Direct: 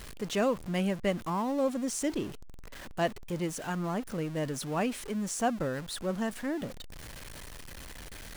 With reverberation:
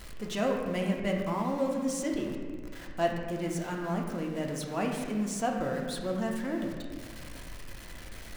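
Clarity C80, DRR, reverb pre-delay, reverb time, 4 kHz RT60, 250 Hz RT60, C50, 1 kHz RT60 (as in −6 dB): 4.5 dB, 0.0 dB, 3 ms, 1.7 s, 1.2 s, 2.4 s, 3.5 dB, 1.5 s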